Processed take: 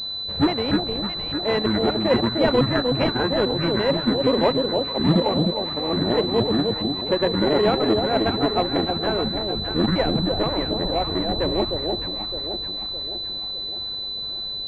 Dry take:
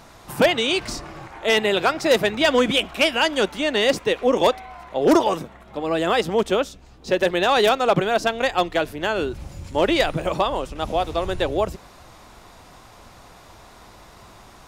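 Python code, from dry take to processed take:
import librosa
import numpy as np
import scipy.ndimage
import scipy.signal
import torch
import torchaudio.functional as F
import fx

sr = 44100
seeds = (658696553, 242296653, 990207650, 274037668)

p1 = fx.pitch_trill(x, sr, semitones=-10.5, every_ms=237)
p2 = fx.sample_hold(p1, sr, seeds[0], rate_hz=1500.0, jitter_pct=0)
p3 = p1 + (p2 * librosa.db_to_amplitude(-5.0))
p4 = fx.echo_alternate(p3, sr, ms=306, hz=850.0, feedback_pct=69, wet_db=-3.5)
p5 = fx.pwm(p4, sr, carrier_hz=4000.0)
y = p5 * librosa.db_to_amplitude(-4.0)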